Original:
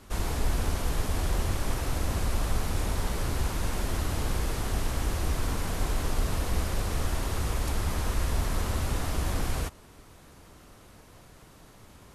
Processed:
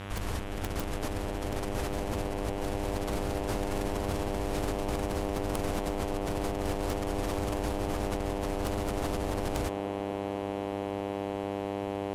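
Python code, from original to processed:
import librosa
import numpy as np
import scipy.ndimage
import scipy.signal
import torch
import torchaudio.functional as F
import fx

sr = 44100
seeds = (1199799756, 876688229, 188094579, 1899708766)

y = fx.over_compress(x, sr, threshold_db=-31.0, ratio=-1.0)
y = (np.mod(10.0 ** (18.0 / 20.0) * y + 1.0, 2.0) - 1.0) / 10.0 ** (18.0 / 20.0)
y = fx.dmg_buzz(y, sr, base_hz=100.0, harmonics=38, level_db=-37.0, tilt_db=-4, odd_only=False)
y = fx.echo_wet_bandpass(y, sr, ms=240, feedback_pct=85, hz=450.0, wet_db=-7.0)
y = fx.doppler_dist(y, sr, depth_ms=0.29)
y = y * 10.0 ** (-3.5 / 20.0)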